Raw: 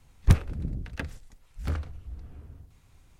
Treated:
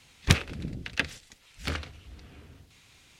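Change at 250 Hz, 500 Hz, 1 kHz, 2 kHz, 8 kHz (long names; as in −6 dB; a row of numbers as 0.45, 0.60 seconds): 0.0, +2.5, +4.0, +10.0, +9.5 decibels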